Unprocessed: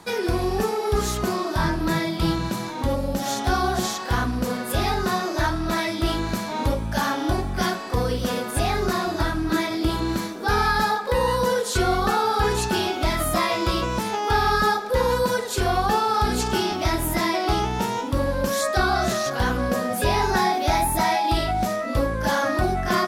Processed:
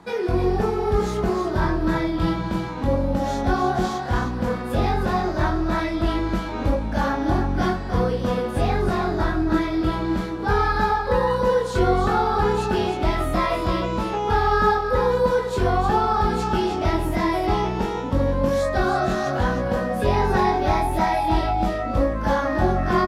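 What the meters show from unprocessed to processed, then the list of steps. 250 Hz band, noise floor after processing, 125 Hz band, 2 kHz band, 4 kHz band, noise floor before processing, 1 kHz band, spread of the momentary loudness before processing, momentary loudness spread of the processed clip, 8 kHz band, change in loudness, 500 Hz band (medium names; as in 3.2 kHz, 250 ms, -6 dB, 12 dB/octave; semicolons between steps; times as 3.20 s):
+2.5 dB, -28 dBFS, +2.5 dB, -2.0 dB, -6.5 dB, -30 dBFS, +0.5 dB, 5 LU, 4 LU, -11.5 dB, +1.0 dB, +2.5 dB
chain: low-pass 1.5 kHz 6 dB/octave; doubling 22 ms -4 dB; delay 310 ms -7.5 dB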